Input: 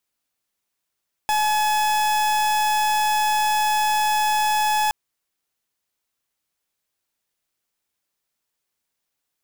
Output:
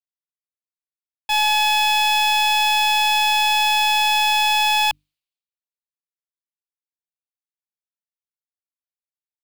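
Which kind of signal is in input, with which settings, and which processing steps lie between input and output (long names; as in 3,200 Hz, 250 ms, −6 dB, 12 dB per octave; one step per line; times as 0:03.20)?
pulse wave 851 Hz, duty 41% −20 dBFS 3.62 s
flat-topped bell 3,300 Hz +10 dB 1.2 octaves
mains-hum notches 50/100/150/200/250/300 Hz
multiband upward and downward expander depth 100%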